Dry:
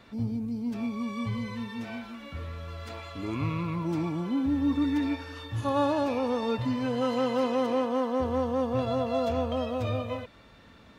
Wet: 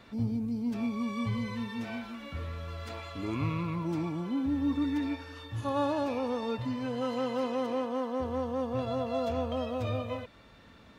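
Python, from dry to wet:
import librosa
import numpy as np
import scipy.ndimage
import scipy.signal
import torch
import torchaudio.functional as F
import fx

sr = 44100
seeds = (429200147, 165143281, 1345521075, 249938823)

y = fx.rider(x, sr, range_db=3, speed_s=2.0)
y = y * librosa.db_to_amplitude(-3.0)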